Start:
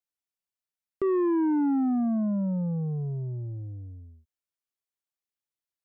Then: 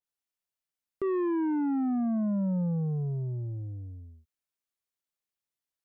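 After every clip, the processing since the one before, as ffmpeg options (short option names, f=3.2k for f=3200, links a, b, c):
-af "alimiter=level_in=2dB:limit=-24dB:level=0:latency=1,volume=-2dB,adynamicequalizer=threshold=0.00316:dfrequency=1700:dqfactor=0.7:tfrequency=1700:tqfactor=0.7:attack=5:release=100:ratio=0.375:range=3.5:mode=boostabove:tftype=highshelf"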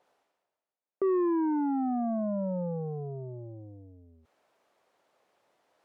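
-af "areverse,acompressor=mode=upward:threshold=-42dB:ratio=2.5,areverse,bandpass=f=620:t=q:w=1.5:csg=0,volume=8dB"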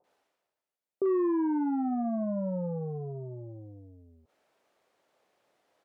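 -filter_complex "[0:a]acrossover=split=960[a][b];[b]adelay=40[c];[a][c]amix=inputs=2:normalize=0"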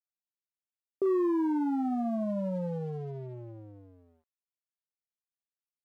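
-af "aeval=exprs='sgn(val(0))*max(abs(val(0))-0.00158,0)':c=same"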